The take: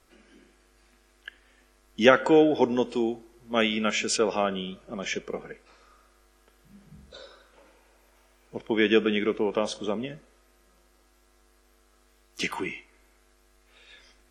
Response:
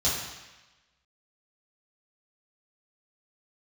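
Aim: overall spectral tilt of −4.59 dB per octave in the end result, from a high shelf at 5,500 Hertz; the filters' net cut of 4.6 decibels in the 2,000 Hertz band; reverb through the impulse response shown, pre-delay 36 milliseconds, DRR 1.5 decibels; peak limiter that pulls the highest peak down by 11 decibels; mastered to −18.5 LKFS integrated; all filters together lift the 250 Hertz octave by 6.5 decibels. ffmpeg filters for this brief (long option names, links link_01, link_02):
-filter_complex "[0:a]equalizer=frequency=250:width_type=o:gain=8.5,equalizer=frequency=2000:width_type=o:gain=-7,highshelf=frequency=5500:gain=5.5,alimiter=limit=-13dB:level=0:latency=1,asplit=2[link_01][link_02];[1:a]atrim=start_sample=2205,adelay=36[link_03];[link_02][link_03]afir=irnorm=-1:irlink=0,volume=-12dB[link_04];[link_01][link_04]amix=inputs=2:normalize=0,volume=4.5dB"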